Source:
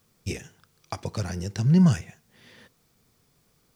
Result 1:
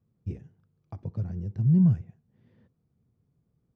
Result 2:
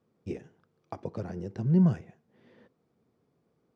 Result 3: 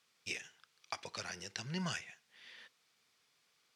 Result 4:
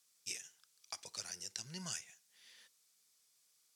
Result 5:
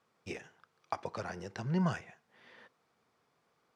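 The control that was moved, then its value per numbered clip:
resonant band-pass, frequency: 110, 360, 2,800, 7,700, 1,000 Hertz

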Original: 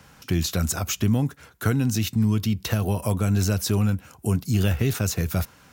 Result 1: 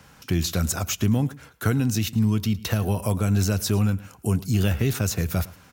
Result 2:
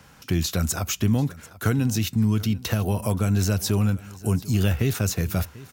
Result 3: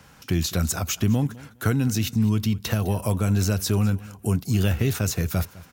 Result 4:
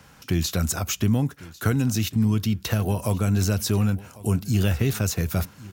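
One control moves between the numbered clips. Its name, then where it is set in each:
repeating echo, delay time: 109, 741, 206, 1,099 milliseconds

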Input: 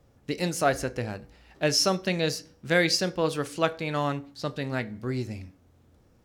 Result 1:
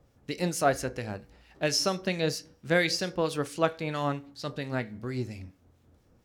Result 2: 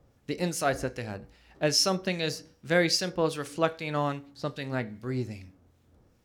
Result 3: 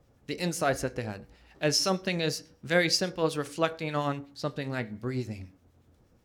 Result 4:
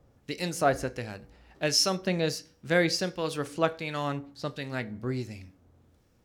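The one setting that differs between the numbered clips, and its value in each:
two-band tremolo in antiphase, speed: 4.4, 2.5, 8.3, 1.4 Hertz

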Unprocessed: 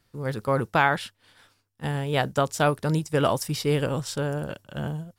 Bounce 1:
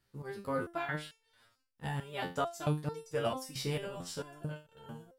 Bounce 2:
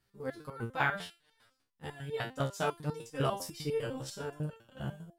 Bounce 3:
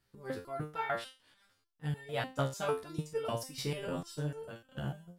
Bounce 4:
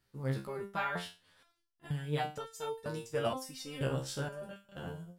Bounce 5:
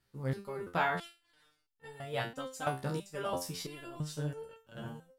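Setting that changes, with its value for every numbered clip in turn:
step-sequenced resonator, speed: 4.5, 10, 6.7, 2.1, 3 Hertz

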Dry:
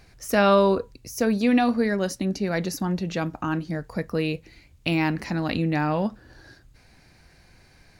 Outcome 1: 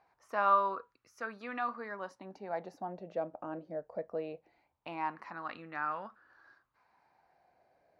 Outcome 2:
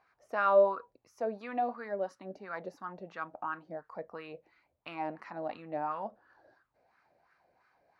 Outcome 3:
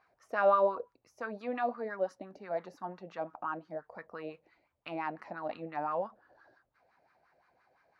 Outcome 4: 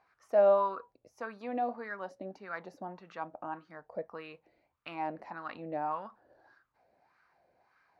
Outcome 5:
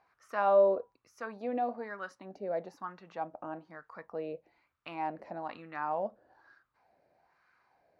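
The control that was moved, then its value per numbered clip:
LFO wah, speed: 0.21, 2.9, 5.8, 1.7, 1.1 Hertz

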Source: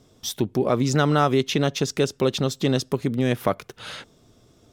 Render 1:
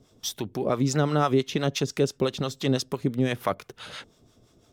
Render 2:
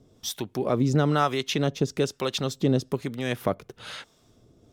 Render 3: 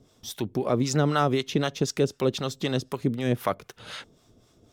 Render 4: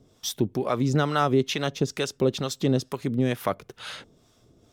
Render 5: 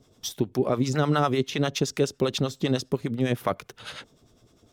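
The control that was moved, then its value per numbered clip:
two-band tremolo in antiphase, speed: 5.9, 1.1, 3.9, 2.2, 9.9 Hertz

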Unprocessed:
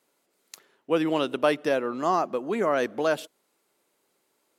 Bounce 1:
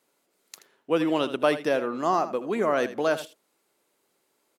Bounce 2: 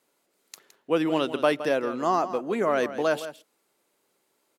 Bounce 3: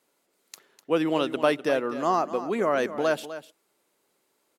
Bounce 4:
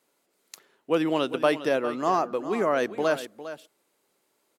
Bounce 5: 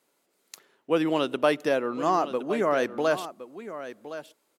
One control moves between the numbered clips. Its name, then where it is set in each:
single-tap delay, delay time: 79, 165, 251, 405, 1,065 milliseconds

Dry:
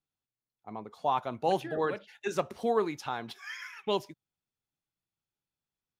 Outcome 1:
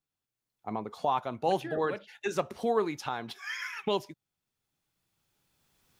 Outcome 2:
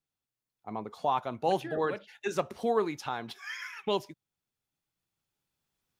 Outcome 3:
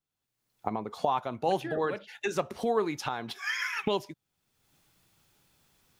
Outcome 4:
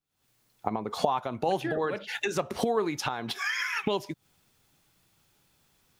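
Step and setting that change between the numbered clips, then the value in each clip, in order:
camcorder AGC, rising by: 12, 5, 32, 88 dB per second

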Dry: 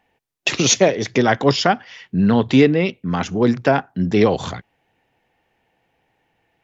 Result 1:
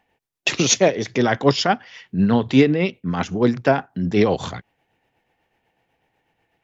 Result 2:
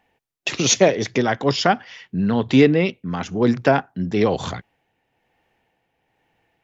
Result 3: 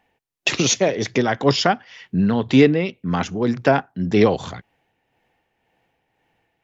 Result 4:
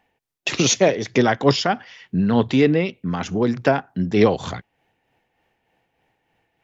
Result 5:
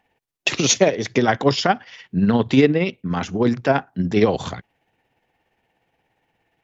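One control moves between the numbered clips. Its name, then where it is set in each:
amplitude tremolo, speed: 8.1, 1.1, 1.9, 3.3, 17 Hertz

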